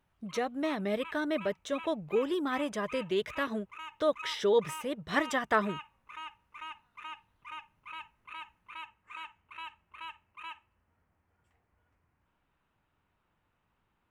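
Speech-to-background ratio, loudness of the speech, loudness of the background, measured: 14.5 dB, −32.0 LKFS, −46.5 LKFS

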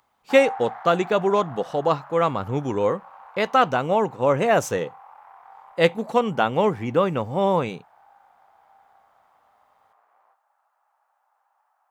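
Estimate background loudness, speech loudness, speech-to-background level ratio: −41.5 LKFS, −22.0 LKFS, 19.5 dB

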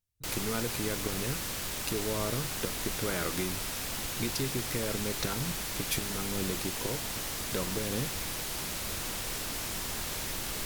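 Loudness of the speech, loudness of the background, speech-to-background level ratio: −36.5 LKFS, −34.0 LKFS, −2.5 dB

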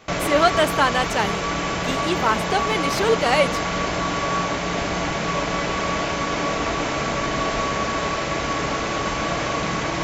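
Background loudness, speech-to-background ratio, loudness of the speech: −23.5 LKFS, 2.0 dB, −21.5 LKFS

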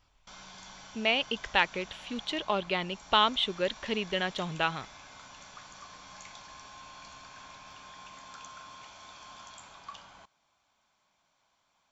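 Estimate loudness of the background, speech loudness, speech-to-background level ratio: −48.5 LKFS, −29.5 LKFS, 19.0 dB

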